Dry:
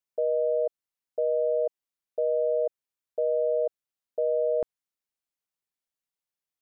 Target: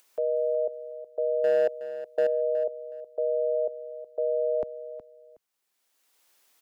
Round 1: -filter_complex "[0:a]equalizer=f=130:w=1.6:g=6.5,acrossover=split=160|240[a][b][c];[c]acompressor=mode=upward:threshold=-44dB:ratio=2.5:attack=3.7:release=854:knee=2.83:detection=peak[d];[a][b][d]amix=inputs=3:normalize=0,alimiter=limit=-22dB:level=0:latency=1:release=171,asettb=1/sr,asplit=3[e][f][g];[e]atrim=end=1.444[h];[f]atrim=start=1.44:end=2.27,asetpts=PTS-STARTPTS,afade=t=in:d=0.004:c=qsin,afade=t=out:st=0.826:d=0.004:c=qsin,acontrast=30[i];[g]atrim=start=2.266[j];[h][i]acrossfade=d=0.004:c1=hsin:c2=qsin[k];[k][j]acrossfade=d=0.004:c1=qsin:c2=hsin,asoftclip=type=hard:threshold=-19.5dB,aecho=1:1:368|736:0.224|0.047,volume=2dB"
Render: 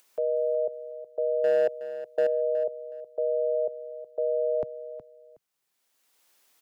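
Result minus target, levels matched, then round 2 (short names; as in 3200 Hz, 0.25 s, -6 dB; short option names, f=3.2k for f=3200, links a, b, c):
125 Hz band +4.5 dB
-filter_complex "[0:a]equalizer=f=130:w=1.6:g=-2.5,acrossover=split=160|240[a][b][c];[c]acompressor=mode=upward:threshold=-44dB:ratio=2.5:attack=3.7:release=854:knee=2.83:detection=peak[d];[a][b][d]amix=inputs=3:normalize=0,alimiter=limit=-22dB:level=0:latency=1:release=171,asettb=1/sr,asplit=3[e][f][g];[e]atrim=end=1.444[h];[f]atrim=start=1.44:end=2.27,asetpts=PTS-STARTPTS,afade=t=in:d=0.004:c=qsin,afade=t=out:st=0.826:d=0.004:c=qsin,acontrast=30[i];[g]atrim=start=2.266[j];[h][i]acrossfade=d=0.004:c1=hsin:c2=qsin[k];[k][j]acrossfade=d=0.004:c1=qsin:c2=hsin,asoftclip=type=hard:threshold=-19.5dB,aecho=1:1:368|736:0.224|0.047,volume=2dB"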